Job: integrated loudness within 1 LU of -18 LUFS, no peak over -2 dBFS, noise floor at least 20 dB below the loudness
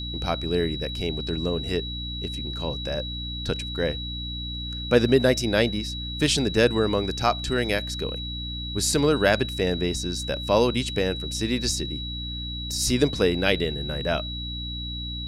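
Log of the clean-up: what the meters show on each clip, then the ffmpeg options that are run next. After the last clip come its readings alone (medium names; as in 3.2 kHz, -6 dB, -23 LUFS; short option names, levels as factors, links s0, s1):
hum 60 Hz; highest harmonic 300 Hz; hum level -32 dBFS; steady tone 3.9 kHz; tone level -33 dBFS; loudness -25.0 LUFS; peak level -5.5 dBFS; loudness target -18.0 LUFS
-> -af "bandreject=f=60:t=h:w=6,bandreject=f=120:t=h:w=6,bandreject=f=180:t=h:w=6,bandreject=f=240:t=h:w=6,bandreject=f=300:t=h:w=6"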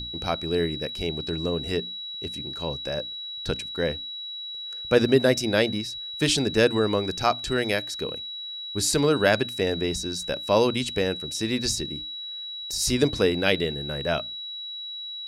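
hum not found; steady tone 3.9 kHz; tone level -33 dBFS
-> -af "bandreject=f=3900:w=30"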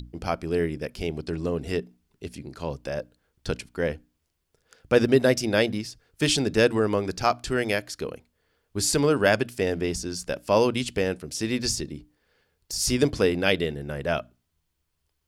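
steady tone not found; loudness -25.5 LUFS; peak level -6.0 dBFS; loudness target -18.0 LUFS
-> -af "volume=2.37,alimiter=limit=0.794:level=0:latency=1"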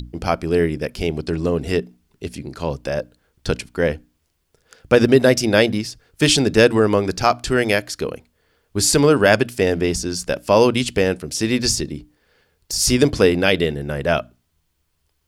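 loudness -18.5 LUFS; peak level -2.0 dBFS; noise floor -69 dBFS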